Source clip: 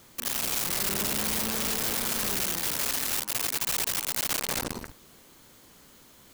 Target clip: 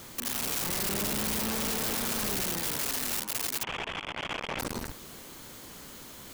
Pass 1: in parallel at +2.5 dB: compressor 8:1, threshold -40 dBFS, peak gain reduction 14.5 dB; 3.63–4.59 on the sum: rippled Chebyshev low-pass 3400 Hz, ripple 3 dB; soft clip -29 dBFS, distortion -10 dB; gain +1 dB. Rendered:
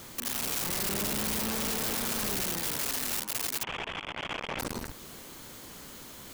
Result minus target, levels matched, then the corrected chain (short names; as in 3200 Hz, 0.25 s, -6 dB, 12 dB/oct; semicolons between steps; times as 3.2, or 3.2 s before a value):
compressor: peak gain reduction +5.5 dB
in parallel at +2.5 dB: compressor 8:1, threshold -33.5 dBFS, peak gain reduction 8.5 dB; 3.63–4.59 on the sum: rippled Chebyshev low-pass 3400 Hz, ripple 3 dB; soft clip -29 dBFS, distortion -8 dB; gain +1 dB